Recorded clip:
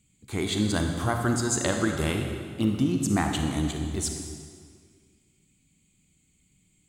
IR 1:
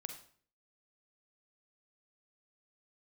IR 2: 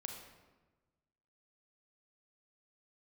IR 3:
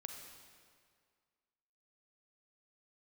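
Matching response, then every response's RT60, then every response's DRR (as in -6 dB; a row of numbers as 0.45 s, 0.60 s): 3; 0.50 s, 1.2 s, 2.0 s; 5.5 dB, 2.0 dB, 3.0 dB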